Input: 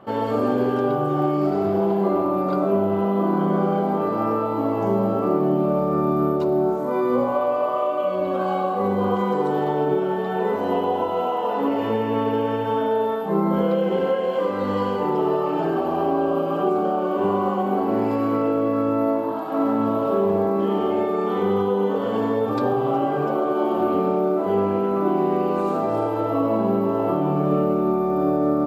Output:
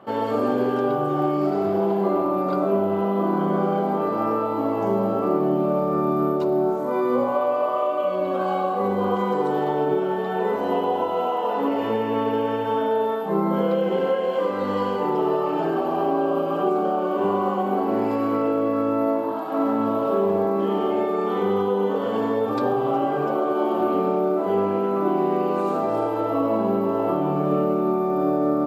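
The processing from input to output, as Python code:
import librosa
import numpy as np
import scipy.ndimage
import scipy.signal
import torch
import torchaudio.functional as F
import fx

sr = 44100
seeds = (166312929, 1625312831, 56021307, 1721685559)

y = fx.highpass(x, sr, hz=170.0, slope=6)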